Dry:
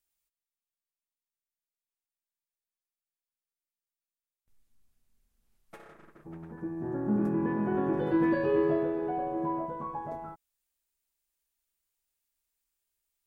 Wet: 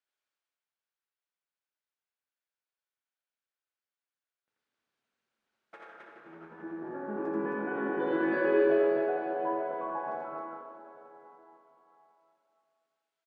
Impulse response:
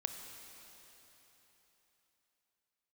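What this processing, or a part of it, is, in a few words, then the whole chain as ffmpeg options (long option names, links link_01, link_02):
station announcement: -filter_complex "[0:a]highpass=400,lowpass=3600,equalizer=frequency=1500:width_type=o:width=0.25:gain=6.5,aecho=1:1:84.55|265.3:0.794|0.708[link_01];[1:a]atrim=start_sample=2205[link_02];[link_01][link_02]afir=irnorm=-1:irlink=0"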